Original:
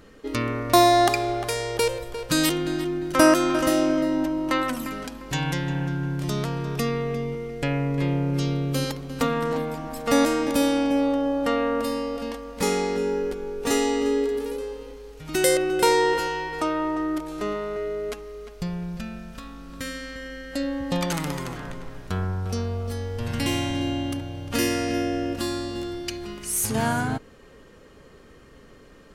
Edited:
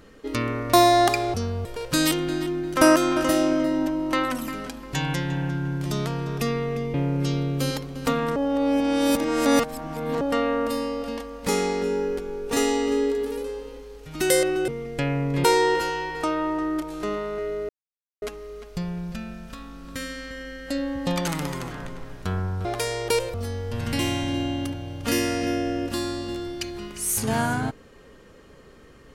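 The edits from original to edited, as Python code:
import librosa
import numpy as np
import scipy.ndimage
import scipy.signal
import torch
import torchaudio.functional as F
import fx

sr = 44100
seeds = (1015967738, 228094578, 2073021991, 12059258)

y = fx.edit(x, sr, fx.swap(start_s=1.34, length_s=0.69, other_s=22.5, other_length_s=0.31),
    fx.move(start_s=7.32, length_s=0.76, to_s=15.82),
    fx.reverse_span(start_s=9.5, length_s=1.85),
    fx.insert_silence(at_s=18.07, length_s=0.53), tone=tone)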